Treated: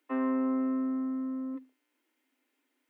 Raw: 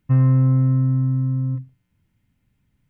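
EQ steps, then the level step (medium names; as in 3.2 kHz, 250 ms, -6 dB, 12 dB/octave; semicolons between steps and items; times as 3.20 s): steep high-pass 260 Hz 96 dB/octave; 0.0 dB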